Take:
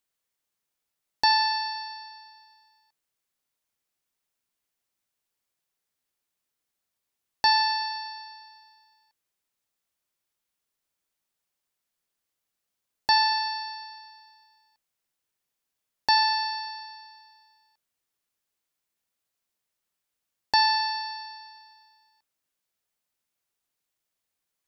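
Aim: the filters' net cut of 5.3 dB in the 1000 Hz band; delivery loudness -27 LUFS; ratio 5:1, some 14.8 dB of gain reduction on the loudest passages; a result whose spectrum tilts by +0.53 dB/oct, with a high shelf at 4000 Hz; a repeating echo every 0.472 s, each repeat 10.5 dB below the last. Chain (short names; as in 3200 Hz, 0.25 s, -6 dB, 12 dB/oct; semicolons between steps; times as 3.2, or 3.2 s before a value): bell 1000 Hz -6.5 dB; high shelf 4000 Hz +8 dB; compressor 5:1, threshold -33 dBFS; feedback echo 0.472 s, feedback 30%, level -10.5 dB; gain +7.5 dB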